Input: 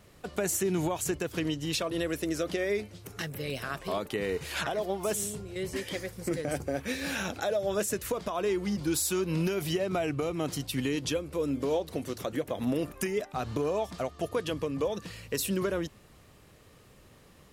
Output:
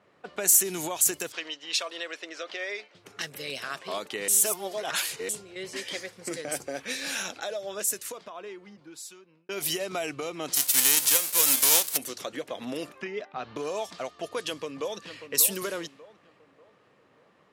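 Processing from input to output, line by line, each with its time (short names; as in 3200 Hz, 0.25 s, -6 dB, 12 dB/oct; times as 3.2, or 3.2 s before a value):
1.32–2.95 BPF 590–5500 Hz
4.28–5.29 reverse
6.7–9.49 fade out linear
10.55–11.96 spectral whitening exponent 0.3
13.01–13.56 air absorption 210 m
14.47–15.29 echo throw 0.59 s, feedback 40%, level -10 dB
whole clip: RIAA curve recording; low-pass opened by the level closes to 1400 Hz, open at -24.5 dBFS; HPF 110 Hz 12 dB/oct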